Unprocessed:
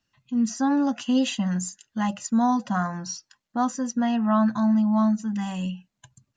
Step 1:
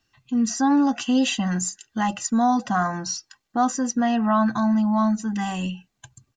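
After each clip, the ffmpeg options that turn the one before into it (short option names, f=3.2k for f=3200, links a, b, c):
-filter_complex "[0:a]aecho=1:1:2.6:0.42,asplit=2[a][b];[b]alimiter=limit=-22.5dB:level=0:latency=1:release=28,volume=-1dB[c];[a][c]amix=inputs=2:normalize=0"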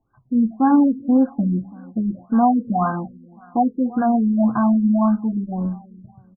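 -af "flanger=delay=6.9:depth=7.3:regen=-81:speed=0.56:shape=triangular,aecho=1:1:332|664|996:0.0891|0.0348|0.0136,afftfilt=real='re*lt(b*sr/1024,470*pow(1700/470,0.5+0.5*sin(2*PI*1.8*pts/sr)))':imag='im*lt(b*sr/1024,470*pow(1700/470,0.5+0.5*sin(2*PI*1.8*pts/sr)))':win_size=1024:overlap=0.75,volume=8.5dB"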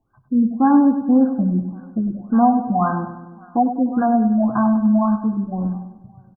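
-af "aecho=1:1:99|198|297|396|495:0.316|0.158|0.0791|0.0395|0.0198,volume=1dB"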